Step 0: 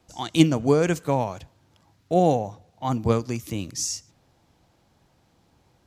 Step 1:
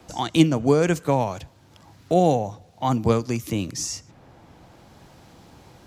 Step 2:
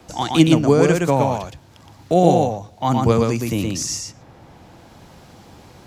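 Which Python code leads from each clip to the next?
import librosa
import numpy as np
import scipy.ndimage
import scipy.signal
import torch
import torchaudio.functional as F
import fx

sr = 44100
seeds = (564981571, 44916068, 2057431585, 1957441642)

y1 = fx.band_squash(x, sr, depth_pct=40)
y1 = F.gain(torch.from_numpy(y1), 2.0).numpy()
y2 = y1 + 10.0 ** (-3.0 / 20.0) * np.pad(y1, (int(118 * sr / 1000.0), 0))[:len(y1)]
y2 = F.gain(torch.from_numpy(y2), 3.0).numpy()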